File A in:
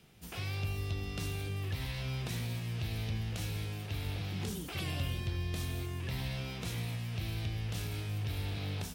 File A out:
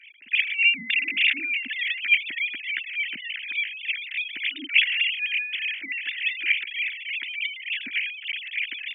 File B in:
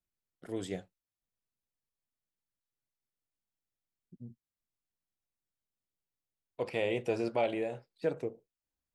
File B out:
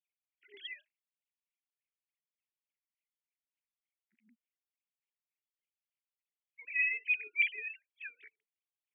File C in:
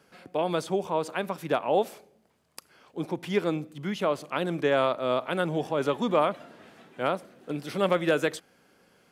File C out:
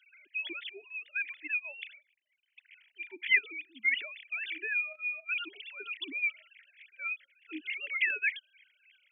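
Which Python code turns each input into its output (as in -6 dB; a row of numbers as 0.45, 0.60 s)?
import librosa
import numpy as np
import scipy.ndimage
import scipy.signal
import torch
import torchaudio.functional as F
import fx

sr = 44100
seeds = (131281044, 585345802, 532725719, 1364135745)

p1 = fx.sine_speech(x, sr)
p2 = fx.level_steps(p1, sr, step_db=18)
p3 = p1 + (p2 * 10.0 ** (2.5 / 20.0))
p4 = scipy.signal.sosfilt(scipy.signal.ellip(3, 1.0, 40, [280.0, 2100.0], 'bandstop', fs=sr, output='sos'), p3)
p5 = fx.filter_lfo_highpass(p4, sr, shape='sine', hz=3.4, low_hz=630.0, high_hz=2400.0, q=3.8)
y = p5 * 10.0 ** (4.0 / 20.0)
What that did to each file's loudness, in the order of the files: +13.5, +3.5, -4.5 LU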